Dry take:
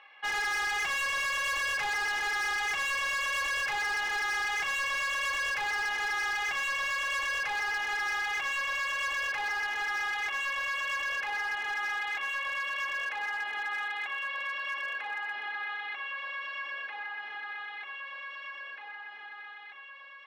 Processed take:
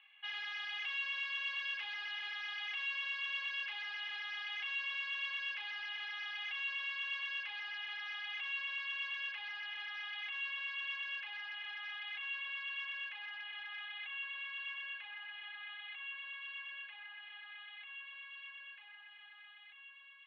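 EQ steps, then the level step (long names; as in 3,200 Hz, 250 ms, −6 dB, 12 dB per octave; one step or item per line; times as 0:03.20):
resonant band-pass 3,100 Hz, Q 4
high-frequency loss of the air 220 metres
+3.0 dB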